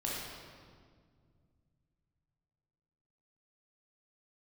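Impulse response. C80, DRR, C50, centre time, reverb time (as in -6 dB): 1.0 dB, -5.5 dB, -2.0 dB, 0.112 s, 1.9 s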